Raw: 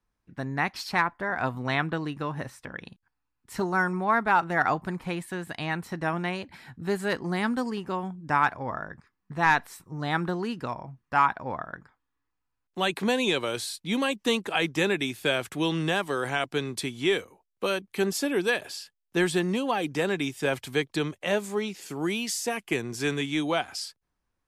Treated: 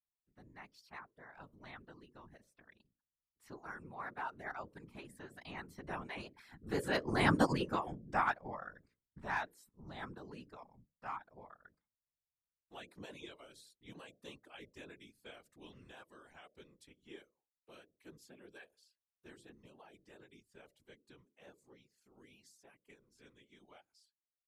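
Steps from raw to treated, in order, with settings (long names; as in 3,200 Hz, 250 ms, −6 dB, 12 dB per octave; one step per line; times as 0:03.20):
source passing by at 0:07.43, 8 m/s, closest 2.3 metres
reverb reduction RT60 0.56 s
mains-hum notches 60/120/180/240/300/360/420/480/540 Hz
random phases in short frames
level +1 dB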